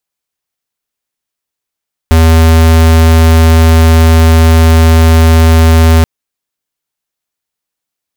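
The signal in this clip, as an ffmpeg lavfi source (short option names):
-f lavfi -i "aevalsrc='0.596*(2*lt(mod(81.1*t,1),0.5)-1)':d=3.93:s=44100"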